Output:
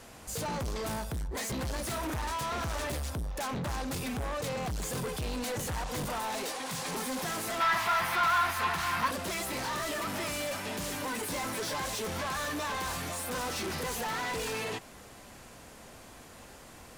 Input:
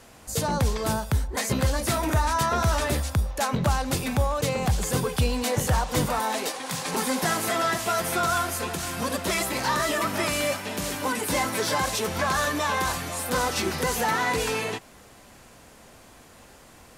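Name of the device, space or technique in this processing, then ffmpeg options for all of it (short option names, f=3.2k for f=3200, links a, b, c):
saturation between pre-emphasis and de-emphasis: -filter_complex "[0:a]highshelf=f=10k:g=6,asoftclip=type=tanh:threshold=-32dB,highshelf=f=10k:g=-6,asettb=1/sr,asplit=3[a][b][c];[a]atrim=end=7.604[d];[b]atrim=start=7.6:end=9.11,asetpts=PTS-STARTPTS,afade=t=in:d=0.004:c=qsin,afade=t=out:st=1.506:d=0.004:c=qsin,equalizer=f=250:t=o:w=1:g=-3,equalizer=f=500:t=o:w=1:g=-8,equalizer=f=1k:t=o:w=1:g=12,equalizer=f=2k:t=o:w=1:g=7,equalizer=f=4k:t=o:w=1:g=3,equalizer=f=8k:t=o:w=1:g=-6[e];[c]atrim=start=9.106[f];[d][e]acrossfade=d=0.004:c1=hsin:c2=qsin[g];[g][f]acrossfade=d=0.004:c1=qsin:c2=hsin"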